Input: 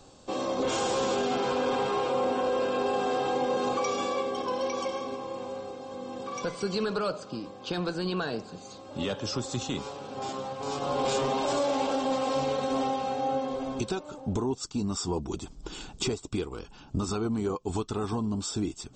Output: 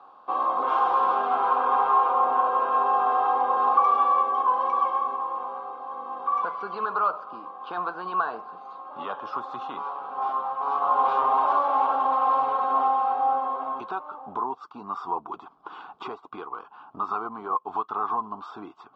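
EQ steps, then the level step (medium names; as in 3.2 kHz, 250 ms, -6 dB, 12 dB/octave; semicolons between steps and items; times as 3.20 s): cabinet simulation 290–3300 Hz, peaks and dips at 460 Hz +3 dB, 1.1 kHz +8 dB, 1.6 kHz +6 dB; high-order bell 970 Hz +15 dB 1.2 oct; -8.0 dB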